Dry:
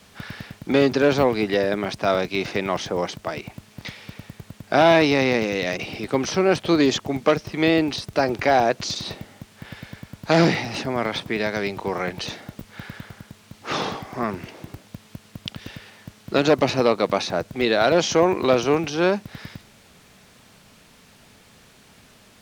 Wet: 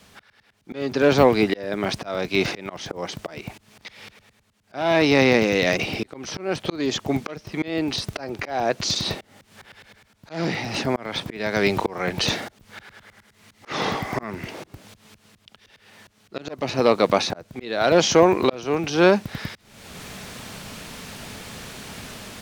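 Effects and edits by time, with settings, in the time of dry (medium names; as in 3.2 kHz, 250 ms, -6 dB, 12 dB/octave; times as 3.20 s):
13.06–14.48 s: peaking EQ 2 kHz +7.5 dB 0.23 oct
whole clip: level rider gain up to 15 dB; slow attack 473 ms; trim -1 dB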